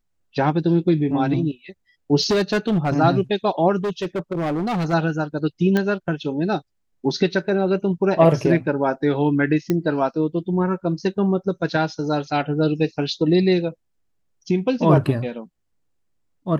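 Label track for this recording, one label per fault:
2.210000	2.940000	clipping −15 dBFS
3.840000	4.940000	clipping −20 dBFS
5.770000	5.770000	click −9 dBFS
9.700000	9.700000	click −9 dBFS

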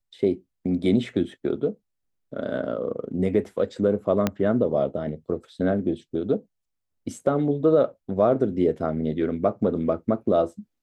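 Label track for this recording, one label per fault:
4.270000	4.270000	click −8 dBFS

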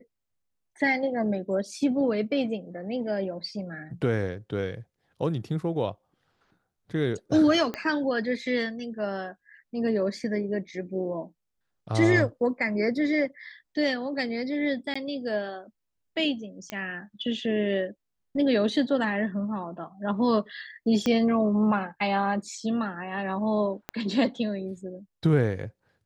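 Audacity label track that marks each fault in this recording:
7.740000	7.740000	click −17 dBFS
14.940000	14.960000	drop-out 15 ms
16.700000	16.700000	click −18 dBFS
21.060000	21.060000	click −14 dBFS
23.890000	23.890000	click −17 dBFS

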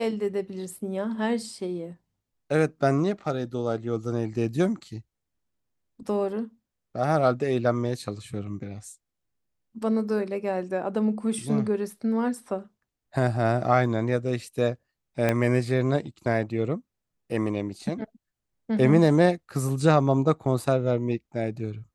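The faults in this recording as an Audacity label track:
15.290000	15.290000	click −10 dBFS

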